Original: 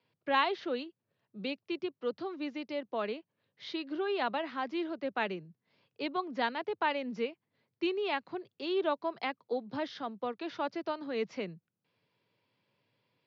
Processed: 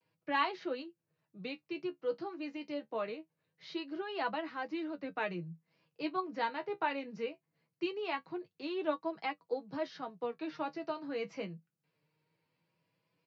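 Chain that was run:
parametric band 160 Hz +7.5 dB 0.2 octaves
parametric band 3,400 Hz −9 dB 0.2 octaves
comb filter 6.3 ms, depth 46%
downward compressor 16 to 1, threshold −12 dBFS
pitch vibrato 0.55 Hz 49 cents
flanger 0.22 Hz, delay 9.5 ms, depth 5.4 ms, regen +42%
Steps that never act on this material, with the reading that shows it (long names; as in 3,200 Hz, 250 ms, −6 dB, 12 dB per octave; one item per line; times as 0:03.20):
downward compressor, threshold −12 dBFS: peak of its input −14.0 dBFS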